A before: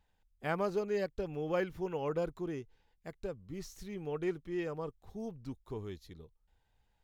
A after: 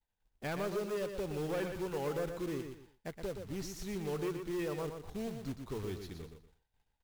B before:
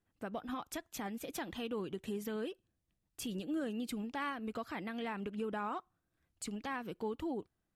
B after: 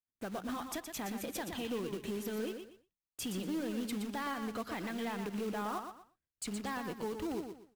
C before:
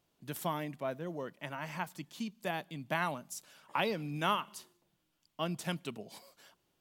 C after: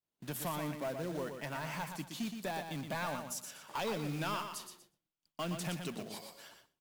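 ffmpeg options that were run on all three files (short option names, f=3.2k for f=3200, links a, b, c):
-filter_complex "[0:a]asplit=2[a][b];[b]acompressor=threshold=-41dB:ratio=6,volume=3dB[c];[a][c]amix=inputs=2:normalize=0,asoftclip=type=tanh:threshold=-29.5dB,acrossover=split=4300[d][e];[d]acrusher=bits=3:mode=log:mix=0:aa=0.000001[f];[f][e]amix=inputs=2:normalize=0,bandreject=f=60:t=h:w=6,bandreject=f=120:t=h:w=6,aecho=1:1:120|240|360:0.447|0.125|0.035,agate=range=-33dB:threshold=-55dB:ratio=3:detection=peak,volume=-2.5dB"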